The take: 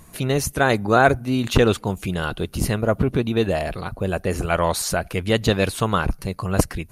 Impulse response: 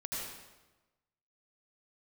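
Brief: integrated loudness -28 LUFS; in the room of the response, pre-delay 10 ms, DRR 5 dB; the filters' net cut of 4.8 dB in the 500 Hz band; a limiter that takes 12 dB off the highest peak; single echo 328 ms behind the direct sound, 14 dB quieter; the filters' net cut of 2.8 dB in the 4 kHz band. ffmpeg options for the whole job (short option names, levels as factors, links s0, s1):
-filter_complex "[0:a]equalizer=f=500:t=o:g=-6,equalizer=f=4000:t=o:g=-3.5,alimiter=limit=0.178:level=0:latency=1,aecho=1:1:328:0.2,asplit=2[s0][s1];[1:a]atrim=start_sample=2205,adelay=10[s2];[s1][s2]afir=irnorm=-1:irlink=0,volume=0.447[s3];[s0][s3]amix=inputs=2:normalize=0,volume=0.708"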